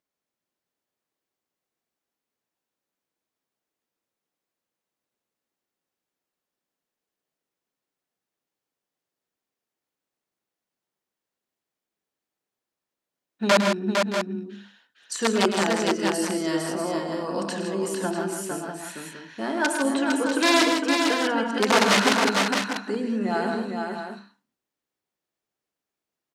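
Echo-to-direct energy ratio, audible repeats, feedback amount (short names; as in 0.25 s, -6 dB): -1.0 dB, 4, no steady repeat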